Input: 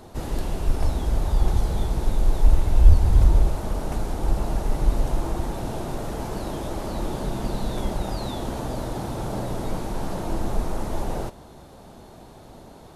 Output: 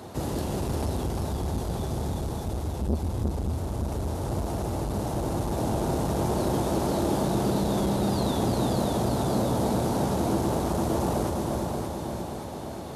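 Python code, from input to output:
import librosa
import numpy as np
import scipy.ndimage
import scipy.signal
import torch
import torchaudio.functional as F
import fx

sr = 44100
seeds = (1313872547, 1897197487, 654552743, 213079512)

p1 = fx.dynamic_eq(x, sr, hz=2000.0, q=0.79, threshold_db=-51.0, ratio=4.0, max_db=-6)
p2 = p1 + fx.echo_feedback(p1, sr, ms=578, feedback_pct=52, wet_db=-5, dry=0)
p3 = fx.rider(p2, sr, range_db=4, speed_s=0.5)
p4 = scipy.signal.sosfilt(scipy.signal.butter(4, 71.0, 'highpass', fs=sr, output='sos'), p3)
p5 = p4 + 10.0 ** (-4.5 / 20.0) * np.pad(p4, (int(351 * sr / 1000.0), 0))[:len(p4)]
y = fx.transformer_sat(p5, sr, knee_hz=280.0)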